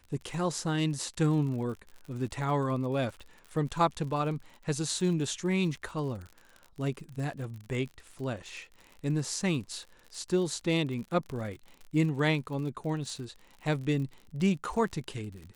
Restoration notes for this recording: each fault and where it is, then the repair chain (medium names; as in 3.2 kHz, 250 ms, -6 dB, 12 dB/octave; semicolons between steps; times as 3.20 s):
crackle 52 per s -39 dBFS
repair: de-click